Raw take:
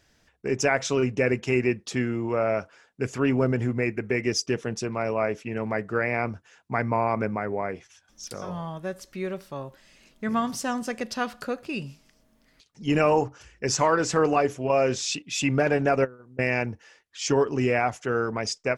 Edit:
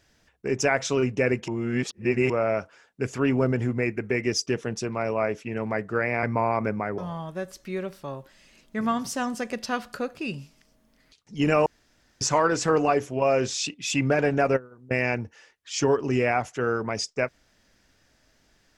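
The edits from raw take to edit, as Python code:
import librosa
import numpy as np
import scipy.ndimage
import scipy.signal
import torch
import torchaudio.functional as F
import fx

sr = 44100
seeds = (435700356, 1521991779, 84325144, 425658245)

y = fx.edit(x, sr, fx.reverse_span(start_s=1.48, length_s=0.82),
    fx.cut(start_s=6.23, length_s=0.56),
    fx.cut(start_s=7.54, length_s=0.92),
    fx.room_tone_fill(start_s=13.14, length_s=0.55), tone=tone)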